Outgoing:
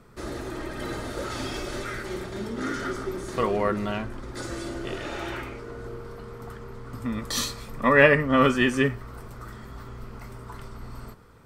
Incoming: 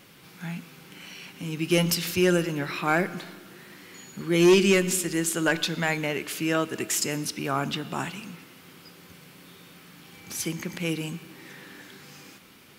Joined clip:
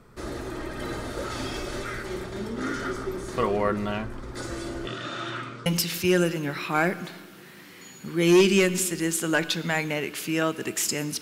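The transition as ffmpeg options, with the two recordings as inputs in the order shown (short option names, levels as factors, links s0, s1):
-filter_complex "[0:a]asettb=1/sr,asplit=3[s0][s1][s2];[s0]atrim=end=4.874[s3];[s1]atrim=start=4.87:end=5.66,asetpts=PTS-STARTPTS,afade=t=in:d=0.004:c=qsin,afade=t=out:st=0.786:d=0.004:c=qsin,highpass=f=130:w=0.5412,highpass=f=130:w=1.3066,equalizer=f=130:t=q:w=4:g=9,equalizer=f=440:t=q:w=4:g=-10,equalizer=f=830:t=q:w=4:g=-9,equalizer=f=1300:t=q:w=4:g=7,equalizer=f=2200:t=q:w=4:g=-5,equalizer=f=3600:t=q:w=4:g=7,lowpass=f=8800:w=0.5412,lowpass=f=8800:w=1.3066[s4];[s2]atrim=start=5.656[s5];[s3][s4]acrossfade=d=0.004:c1=hsin:c2=qsin[s6];[s6][s5]acrossfade=d=0.004:c1=qsin:c2=hsin,apad=whole_dur=11.21,atrim=end=11.21,atrim=end=5.662[s7];[1:a]atrim=start=1.788:end=7.34[s8];[s7][s8]acrossfade=d=0.004:c1=hsin:c2=hsin"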